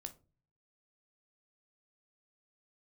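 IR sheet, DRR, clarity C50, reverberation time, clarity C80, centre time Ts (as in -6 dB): 7.0 dB, 16.0 dB, 0.35 s, 23.5 dB, 6 ms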